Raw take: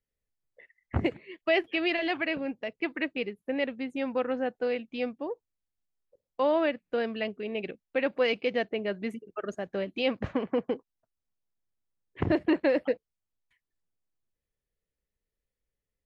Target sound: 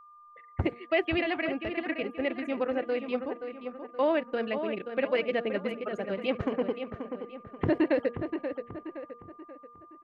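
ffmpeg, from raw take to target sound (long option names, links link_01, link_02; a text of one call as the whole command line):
ffmpeg -i in.wav -filter_complex "[0:a]acrossover=split=3600[link_01][link_02];[link_02]acompressor=threshold=-55dB:ratio=4:attack=1:release=60[link_03];[link_01][link_03]amix=inputs=2:normalize=0,asplit=2[link_04][link_05];[link_05]adelay=845,lowpass=frequency=3300:poles=1,volume=-8dB,asplit=2[link_06][link_07];[link_07]adelay=845,lowpass=frequency=3300:poles=1,volume=0.44,asplit=2[link_08][link_09];[link_09]adelay=845,lowpass=frequency=3300:poles=1,volume=0.44,asplit=2[link_10][link_11];[link_11]adelay=845,lowpass=frequency=3300:poles=1,volume=0.44,asplit=2[link_12][link_13];[link_13]adelay=845,lowpass=frequency=3300:poles=1,volume=0.44[link_14];[link_04][link_06][link_08][link_10][link_12][link_14]amix=inputs=6:normalize=0,atempo=1.6,bandreject=frequency=237.3:width_type=h:width=4,bandreject=frequency=474.6:width_type=h:width=4,bandreject=frequency=711.9:width_type=h:width=4,bandreject=frequency=949.2:width_type=h:width=4,bandreject=frequency=1186.5:width_type=h:width=4,bandreject=frequency=1423.8:width_type=h:width=4,bandreject=frequency=1661.1:width_type=h:width=4,aeval=exprs='val(0)+0.00282*sin(2*PI*1200*n/s)':channel_layout=same" out.wav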